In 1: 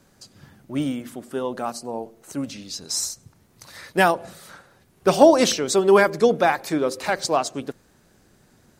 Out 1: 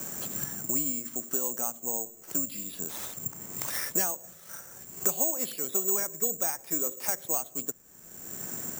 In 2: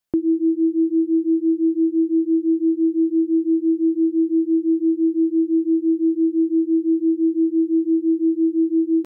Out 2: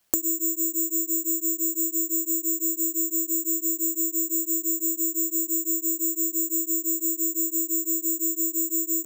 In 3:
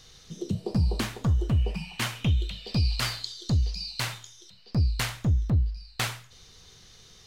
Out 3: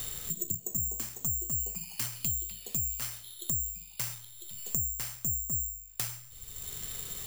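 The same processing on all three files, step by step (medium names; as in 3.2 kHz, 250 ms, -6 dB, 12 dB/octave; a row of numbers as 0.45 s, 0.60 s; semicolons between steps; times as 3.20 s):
careless resampling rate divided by 6×, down filtered, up zero stuff; three bands compressed up and down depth 100%; trim -16 dB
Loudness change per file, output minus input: -8.0 LU, -4.0 LU, -4.0 LU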